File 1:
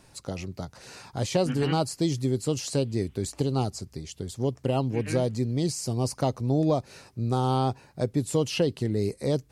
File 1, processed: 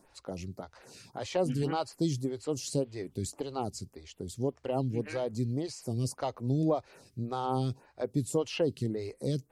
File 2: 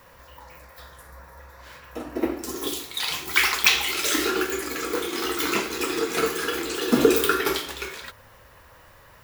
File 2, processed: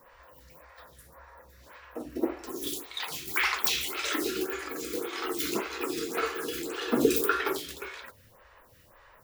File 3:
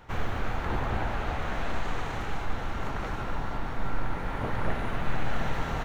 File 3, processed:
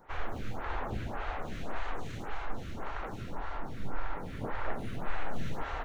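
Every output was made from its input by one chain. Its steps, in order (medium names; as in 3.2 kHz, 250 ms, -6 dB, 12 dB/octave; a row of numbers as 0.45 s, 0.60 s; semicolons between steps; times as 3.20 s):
lamp-driven phase shifter 1.8 Hz; trim -3 dB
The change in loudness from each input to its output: -5.5 LU, -6.5 LU, -6.5 LU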